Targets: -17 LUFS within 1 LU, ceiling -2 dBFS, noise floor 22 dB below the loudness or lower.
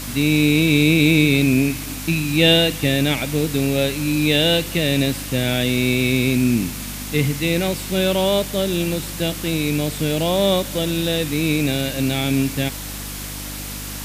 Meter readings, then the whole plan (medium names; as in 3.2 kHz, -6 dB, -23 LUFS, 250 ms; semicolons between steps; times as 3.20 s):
hum 50 Hz; highest harmonic 300 Hz; hum level -30 dBFS; noise floor -30 dBFS; noise floor target -41 dBFS; loudness -19.0 LUFS; peak level -3.0 dBFS; loudness target -17.0 LUFS
-> de-hum 50 Hz, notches 6; noise reduction 11 dB, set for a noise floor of -30 dBFS; trim +2 dB; peak limiter -2 dBFS